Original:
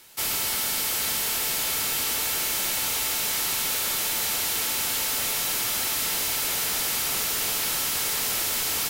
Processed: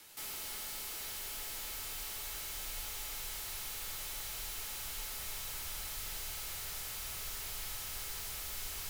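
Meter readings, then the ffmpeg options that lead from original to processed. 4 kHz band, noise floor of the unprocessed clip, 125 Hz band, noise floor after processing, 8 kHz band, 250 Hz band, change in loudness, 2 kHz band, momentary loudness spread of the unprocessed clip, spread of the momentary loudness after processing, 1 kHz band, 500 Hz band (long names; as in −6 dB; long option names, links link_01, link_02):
−16.5 dB, −27 dBFS, −9.5 dB, −43 dBFS, −16.5 dB, −19.0 dB, −16.0 dB, −16.5 dB, 0 LU, 0 LU, −16.5 dB, −17.5 dB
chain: -af "asoftclip=type=hard:threshold=-37dB,asubboost=boost=12:cutoff=79,afreqshift=-29,volume=-5dB"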